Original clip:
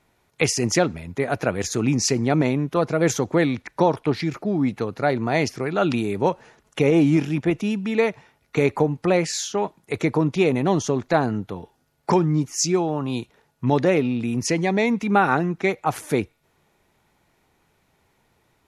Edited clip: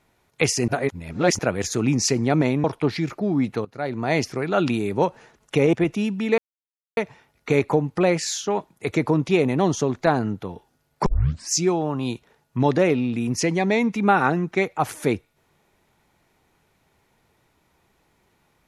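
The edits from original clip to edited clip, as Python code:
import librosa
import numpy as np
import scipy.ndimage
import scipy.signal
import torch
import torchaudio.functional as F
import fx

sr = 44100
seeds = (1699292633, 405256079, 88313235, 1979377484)

y = fx.edit(x, sr, fx.reverse_span(start_s=0.68, length_s=0.71),
    fx.cut(start_s=2.64, length_s=1.24),
    fx.fade_in_from(start_s=4.89, length_s=0.52, floor_db=-17.0),
    fx.cut(start_s=6.97, length_s=0.42),
    fx.insert_silence(at_s=8.04, length_s=0.59),
    fx.tape_start(start_s=12.13, length_s=0.45), tone=tone)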